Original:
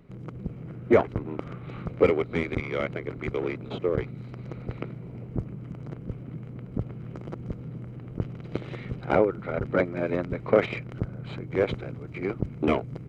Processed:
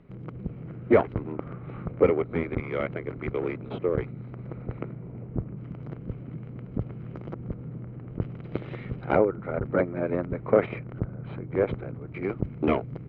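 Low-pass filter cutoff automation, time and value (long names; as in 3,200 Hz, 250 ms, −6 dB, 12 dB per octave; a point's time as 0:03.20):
3,100 Hz
from 0:01.32 1,800 Hz
from 0:02.67 2,400 Hz
from 0:04.13 1,800 Hz
from 0:05.57 3,200 Hz
from 0:07.33 2,000 Hz
from 0:08.10 2,900 Hz
from 0:09.17 1,700 Hz
from 0:12.14 2,800 Hz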